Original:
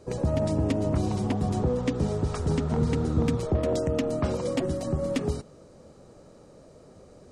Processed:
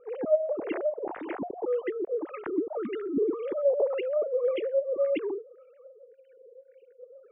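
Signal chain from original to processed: formants replaced by sine waves; spectral selection erased 6.05–7.01 s, 540–1400 Hz; LFO low-pass sine 1.8 Hz 410–2700 Hz; trim -5.5 dB

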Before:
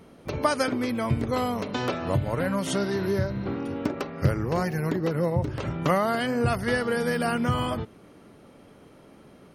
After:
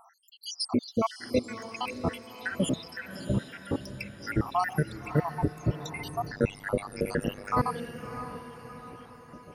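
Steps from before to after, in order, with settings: random holes in the spectrogram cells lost 84%; echo that smears into a reverb 623 ms, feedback 49%, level -11.5 dB; 6.32–7.54 s: AM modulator 100 Hz, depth 95%; trim +5.5 dB

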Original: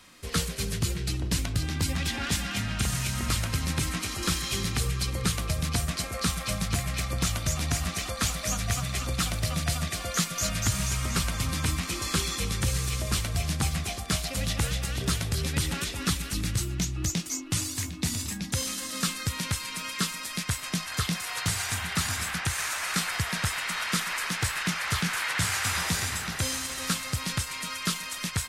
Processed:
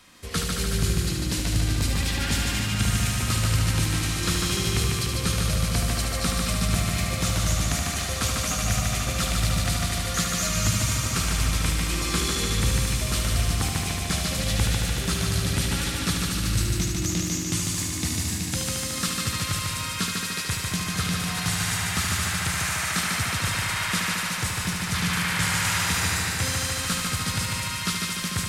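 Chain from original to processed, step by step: 24.14–24.94 s: peaking EQ 1.8 kHz -5.5 dB 2.2 oct; multi-head delay 74 ms, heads first and second, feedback 75%, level -6 dB

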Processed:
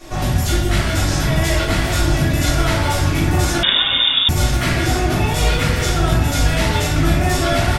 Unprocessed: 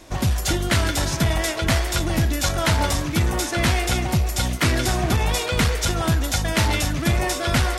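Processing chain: peak limiter -20 dBFS, peak gain reduction 10.5 dB; delay 993 ms -8 dB; simulated room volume 190 m³, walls mixed, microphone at 3.5 m; 3.63–4.29 s: frequency inversion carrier 3.6 kHz; trim -1.5 dB

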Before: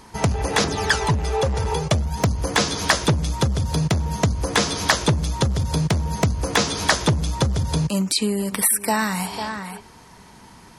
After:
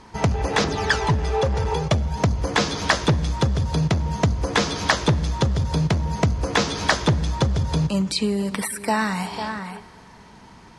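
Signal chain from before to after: distance through air 76 m; on a send: reverberation RT60 3.4 s, pre-delay 7 ms, DRR 18 dB

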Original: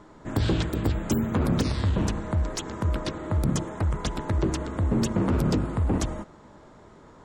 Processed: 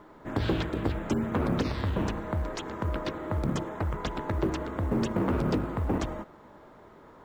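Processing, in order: low-pass 7.4 kHz; tone controls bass -6 dB, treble -10 dB; companded quantiser 8-bit

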